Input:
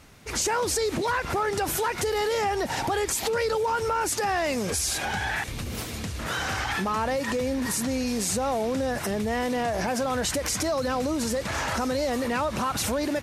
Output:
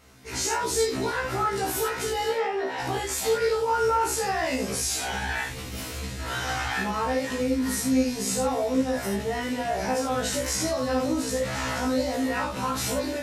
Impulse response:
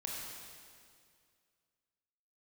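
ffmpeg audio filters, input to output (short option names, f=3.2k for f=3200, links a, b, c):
-filter_complex "[0:a]asettb=1/sr,asplit=3[a][b][c];[a]atrim=end=2.304[d];[b]atrim=start=2.3:end=2.8,asetpts=PTS-STARTPTS,afade=t=in:d=0.004:c=qsin,afade=t=out:st=0.496:d=0.004:c=qsin,acrossover=split=260 3500:gain=0.0708 1 0.126[e][f][g];[e][f][g]amix=inputs=3:normalize=0[h];[c]atrim=start=2.796[i];[d][h]acrossfade=d=0.004:c1=hsin:c2=qsin[j];[j][i]acrossfade=d=0.004:c1=qsin:c2=hsin[k];[1:a]atrim=start_sample=2205,afade=t=out:st=0.22:d=0.01,atrim=end_sample=10143,asetrate=74970,aresample=44100[l];[k][l]afir=irnorm=-1:irlink=0,afftfilt=real='re*1.73*eq(mod(b,3),0)':imag='im*1.73*eq(mod(b,3),0)':win_size=2048:overlap=0.75,volume=7dB"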